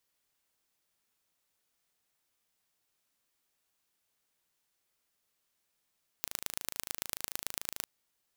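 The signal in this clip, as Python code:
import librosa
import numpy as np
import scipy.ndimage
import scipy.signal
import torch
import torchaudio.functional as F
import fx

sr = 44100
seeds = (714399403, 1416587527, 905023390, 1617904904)

y = fx.impulse_train(sr, length_s=1.6, per_s=26.9, accent_every=3, level_db=-5.5)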